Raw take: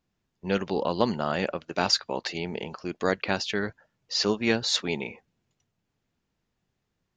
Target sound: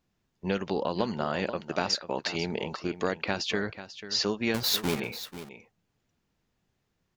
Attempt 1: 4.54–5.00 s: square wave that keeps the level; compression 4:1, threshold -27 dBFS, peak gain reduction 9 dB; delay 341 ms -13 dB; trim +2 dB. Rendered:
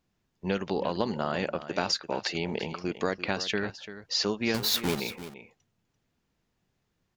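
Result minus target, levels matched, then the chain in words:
echo 150 ms early
4.54–5.00 s: square wave that keeps the level; compression 4:1, threshold -27 dBFS, peak gain reduction 9 dB; delay 491 ms -13 dB; trim +2 dB

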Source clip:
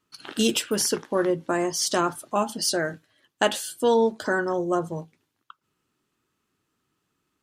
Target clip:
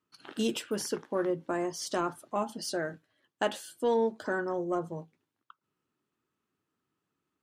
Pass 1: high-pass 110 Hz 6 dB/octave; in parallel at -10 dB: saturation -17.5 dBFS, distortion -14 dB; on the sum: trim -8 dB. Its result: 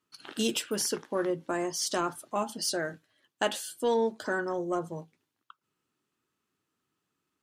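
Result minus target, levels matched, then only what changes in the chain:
4 kHz band +4.0 dB
add after high-pass: treble shelf 2.4 kHz -8 dB

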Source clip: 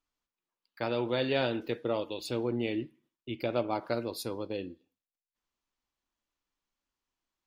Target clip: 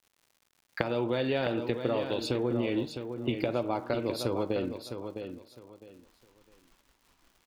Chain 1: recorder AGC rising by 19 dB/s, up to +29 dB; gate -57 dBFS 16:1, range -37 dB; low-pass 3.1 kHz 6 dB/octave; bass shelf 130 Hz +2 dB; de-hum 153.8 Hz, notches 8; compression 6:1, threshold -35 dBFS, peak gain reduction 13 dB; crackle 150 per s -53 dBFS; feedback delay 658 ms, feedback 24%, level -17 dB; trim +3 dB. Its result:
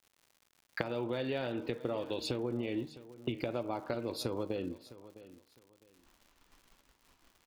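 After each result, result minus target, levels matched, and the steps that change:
compression: peak gain reduction +6 dB; echo-to-direct -9 dB
change: compression 6:1, threshold -27.5 dBFS, peak gain reduction 7 dB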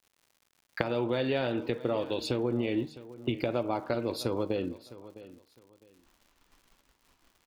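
echo-to-direct -9 dB
change: feedback delay 658 ms, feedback 24%, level -8 dB

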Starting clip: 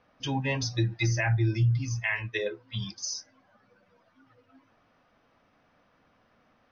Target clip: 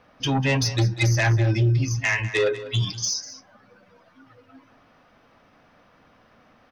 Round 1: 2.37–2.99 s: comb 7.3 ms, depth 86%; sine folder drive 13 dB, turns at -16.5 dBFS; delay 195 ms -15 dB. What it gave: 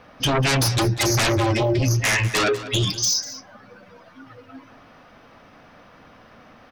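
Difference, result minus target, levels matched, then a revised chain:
sine folder: distortion +22 dB
2.37–2.99 s: comb 7.3 ms, depth 86%; sine folder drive 5 dB, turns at -16.5 dBFS; delay 195 ms -15 dB

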